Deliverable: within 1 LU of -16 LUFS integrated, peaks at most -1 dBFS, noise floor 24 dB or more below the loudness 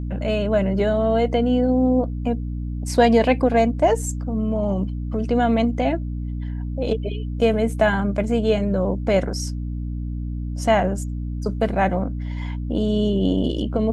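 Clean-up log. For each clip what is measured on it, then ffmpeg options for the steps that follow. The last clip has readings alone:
hum 60 Hz; highest harmonic 300 Hz; hum level -25 dBFS; loudness -22.0 LUFS; peak level -4.5 dBFS; loudness target -16.0 LUFS
-> -af "bandreject=f=60:t=h:w=4,bandreject=f=120:t=h:w=4,bandreject=f=180:t=h:w=4,bandreject=f=240:t=h:w=4,bandreject=f=300:t=h:w=4"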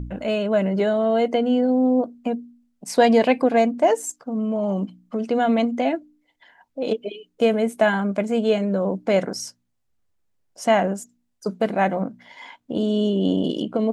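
hum not found; loudness -22.0 LUFS; peak level -5.5 dBFS; loudness target -16.0 LUFS
-> -af "volume=2,alimiter=limit=0.891:level=0:latency=1"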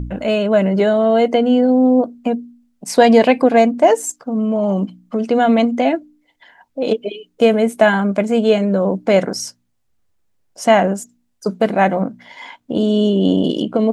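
loudness -16.0 LUFS; peak level -1.0 dBFS; noise floor -65 dBFS

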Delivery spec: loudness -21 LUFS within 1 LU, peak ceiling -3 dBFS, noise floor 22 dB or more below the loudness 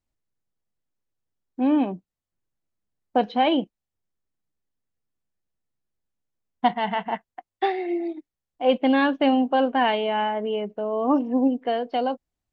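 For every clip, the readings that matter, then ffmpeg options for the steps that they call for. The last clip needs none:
loudness -24.0 LUFS; peak level -8.5 dBFS; loudness target -21.0 LUFS
-> -af "volume=1.41"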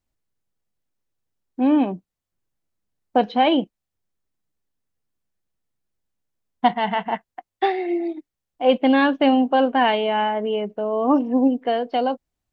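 loudness -21.0 LUFS; peak level -5.5 dBFS; noise floor -84 dBFS

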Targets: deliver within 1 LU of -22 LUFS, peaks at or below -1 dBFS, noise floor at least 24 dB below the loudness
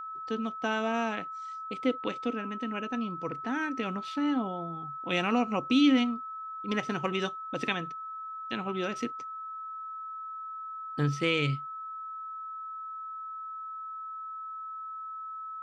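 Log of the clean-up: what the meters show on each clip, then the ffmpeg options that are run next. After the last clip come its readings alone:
steady tone 1.3 kHz; tone level -37 dBFS; loudness -32.5 LUFS; peak level -13.0 dBFS; loudness target -22.0 LUFS
-> -af "bandreject=f=1300:w=30"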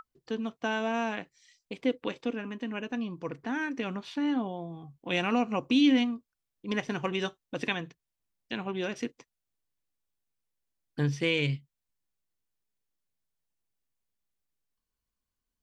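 steady tone not found; loudness -31.0 LUFS; peak level -13.5 dBFS; loudness target -22.0 LUFS
-> -af "volume=2.82"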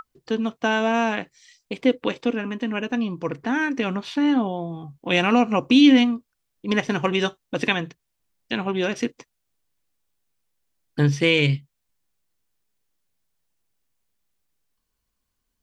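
loudness -22.0 LUFS; peak level -4.5 dBFS; noise floor -77 dBFS

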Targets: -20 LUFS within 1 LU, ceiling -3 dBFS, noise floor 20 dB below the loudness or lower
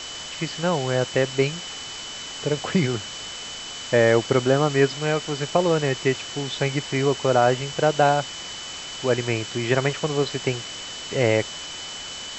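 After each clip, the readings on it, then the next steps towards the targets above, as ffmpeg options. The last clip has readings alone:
steady tone 3 kHz; tone level -36 dBFS; noise floor -35 dBFS; noise floor target -44 dBFS; loudness -23.5 LUFS; peak level -5.0 dBFS; loudness target -20.0 LUFS
-> -af "bandreject=f=3000:w=30"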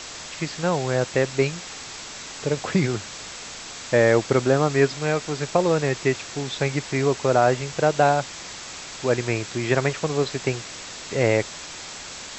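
steady tone not found; noise floor -38 dBFS; noise floor target -43 dBFS
-> -af "afftdn=nr=6:nf=-38"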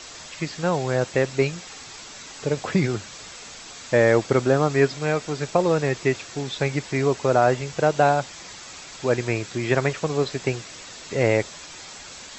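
noise floor -41 dBFS; noise floor target -43 dBFS
-> -af "afftdn=nr=6:nf=-41"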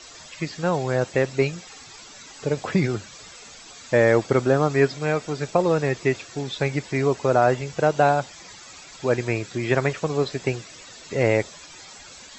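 noise floor -44 dBFS; loudness -23.0 LUFS; peak level -5.0 dBFS; loudness target -20.0 LUFS
-> -af "volume=1.41,alimiter=limit=0.708:level=0:latency=1"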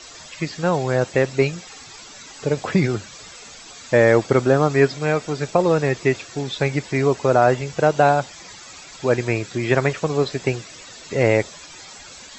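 loudness -20.0 LUFS; peak level -3.0 dBFS; noise floor -41 dBFS

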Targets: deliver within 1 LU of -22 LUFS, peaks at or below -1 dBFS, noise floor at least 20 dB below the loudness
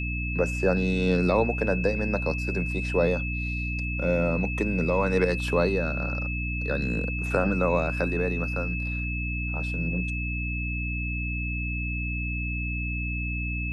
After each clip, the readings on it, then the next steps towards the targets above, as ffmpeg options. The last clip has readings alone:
hum 60 Hz; highest harmonic 300 Hz; hum level -28 dBFS; steady tone 2.6 kHz; tone level -32 dBFS; loudness -27.0 LUFS; peak level -9.5 dBFS; loudness target -22.0 LUFS
-> -af "bandreject=f=60:t=h:w=4,bandreject=f=120:t=h:w=4,bandreject=f=180:t=h:w=4,bandreject=f=240:t=h:w=4,bandreject=f=300:t=h:w=4"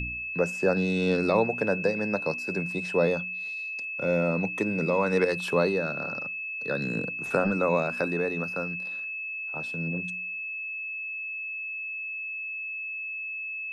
hum not found; steady tone 2.6 kHz; tone level -32 dBFS
-> -af "bandreject=f=2600:w=30"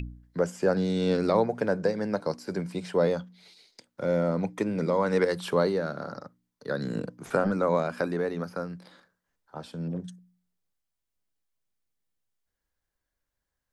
steady tone not found; loudness -28.5 LUFS; peak level -11.0 dBFS; loudness target -22.0 LUFS
-> -af "volume=2.11"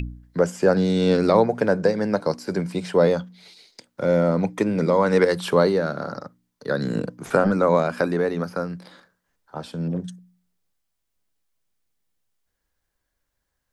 loudness -22.0 LUFS; peak level -4.5 dBFS; noise floor -78 dBFS

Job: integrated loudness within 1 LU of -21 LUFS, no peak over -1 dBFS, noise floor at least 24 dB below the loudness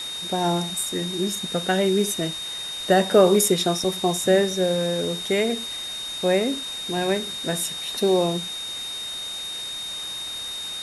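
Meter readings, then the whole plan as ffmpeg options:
steady tone 3.7 kHz; tone level -30 dBFS; noise floor -32 dBFS; noise floor target -48 dBFS; loudness -23.5 LUFS; peak level -4.5 dBFS; loudness target -21.0 LUFS
-> -af "bandreject=f=3700:w=30"
-af "afftdn=nr=16:nf=-32"
-af "volume=1.33"

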